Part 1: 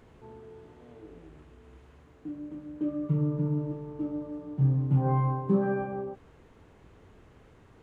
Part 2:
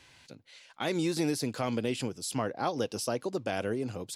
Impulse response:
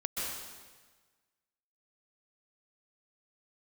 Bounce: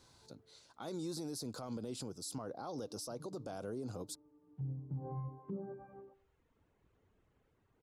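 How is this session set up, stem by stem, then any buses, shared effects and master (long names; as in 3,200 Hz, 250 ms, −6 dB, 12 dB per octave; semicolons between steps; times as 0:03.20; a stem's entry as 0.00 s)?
−8.5 dB, 0.00 s, no send, echo send −15 dB, treble cut that deepens with the level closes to 740 Hz, closed at −24.5 dBFS; reverb reduction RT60 0.78 s; expander for the loud parts 1.5 to 1, over −37 dBFS; automatic ducking −15 dB, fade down 1.90 s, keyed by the second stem
−4.5 dB, 0.00 s, no send, no echo send, flat-topped bell 2,300 Hz −14.5 dB 1.1 octaves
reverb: not used
echo: repeating echo 97 ms, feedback 37%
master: brickwall limiter −34 dBFS, peak gain reduction 11.5 dB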